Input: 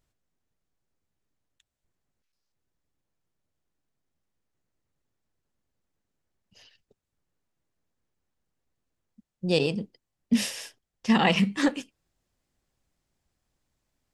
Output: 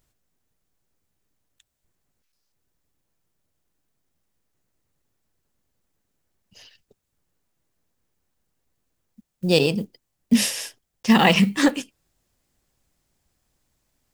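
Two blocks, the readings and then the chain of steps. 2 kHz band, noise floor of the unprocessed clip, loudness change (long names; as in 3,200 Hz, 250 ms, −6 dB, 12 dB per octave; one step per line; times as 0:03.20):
+6.0 dB, −84 dBFS, +5.5 dB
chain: one scale factor per block 7 bits
high-shelf EQ 8,100 Hz +8 dB
level +5.5 dB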